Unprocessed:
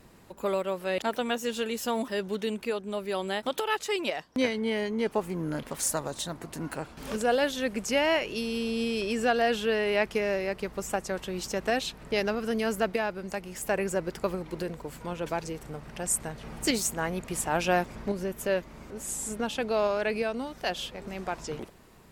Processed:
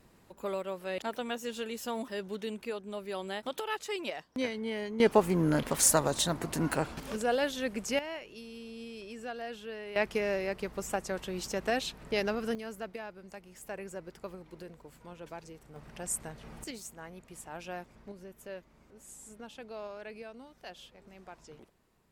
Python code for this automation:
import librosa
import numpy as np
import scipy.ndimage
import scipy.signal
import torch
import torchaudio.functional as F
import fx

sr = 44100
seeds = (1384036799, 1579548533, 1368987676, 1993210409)

y = fx.gain(x, sr, db=fx.steps((0.0, -6.5), (5.0, 5.0), (7.0, -4.0), (7.99, -15.0), (9.96, -3.0), (12.55, -13.0), (15.76, -6.5), (16.64, -16.0)))